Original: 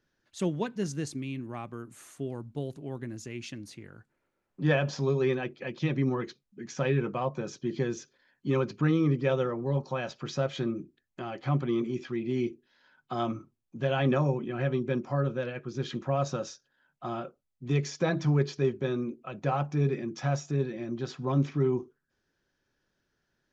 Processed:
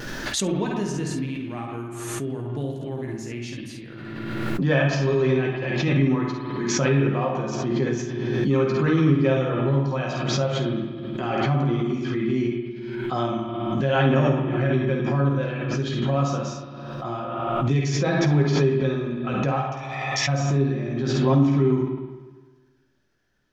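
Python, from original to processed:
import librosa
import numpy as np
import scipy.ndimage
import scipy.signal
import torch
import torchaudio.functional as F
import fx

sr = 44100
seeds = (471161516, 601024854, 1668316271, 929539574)

p1 = fx.steep_lowpass(x, sr, hz=7100.0, slope=36, at=(18.46, 18.98))
p2 = fx.vibrato(p1, sr, rate_hz=0.39, depth_cents=7.1)
p3 = fx.brickwall_highpass(p2, sr, low_hz=1700.0, at=(19.59, 20.27), fade=0.02)
p4 = p3 + fx.room_early_taps(p3, sr, ms=(15, 51, 68), db=(-6.5, -6.0, -7.5), dry=0)
p5 = fx.rev_spring(p4, sr, rt60_s=1.4, pass_ms=(50, 54), chirp_ms=75, drr_db=1.5)
p6 = fx.pre_swell(p5, sr, db_per_s=26.0)
y = F.gain(torch.from_numpy(p6), 1.5).numpy()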